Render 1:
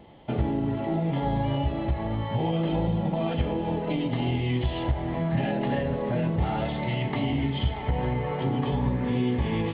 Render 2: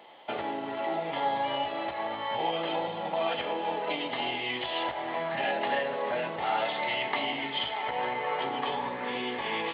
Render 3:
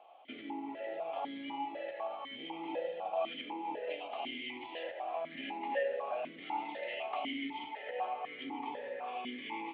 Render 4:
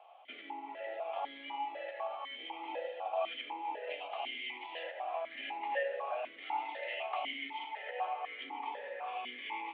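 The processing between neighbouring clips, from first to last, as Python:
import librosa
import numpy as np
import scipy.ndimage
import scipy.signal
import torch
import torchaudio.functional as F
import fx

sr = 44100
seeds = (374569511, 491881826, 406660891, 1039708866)

y1 = scipy.signal.sosfilt(scipy.signal.butter(2, 740.0, 'highpass', fs=sr, output='sos'), x)
y1 = F.gain(torch.from_numpy(y1), 5.5).numpy()
y2 = fx.vowel_held(y1, sr, hz=4.0)
y2 = F.gain(torch.from_numpy(y2), 2.0).numpy()
y3 = fx.bandpass_edges(y2, sr, low_hz=650.0, high_hz=3900.0)
y3 = F.gain(torch.from_numpy(y3), 2.5).numpy()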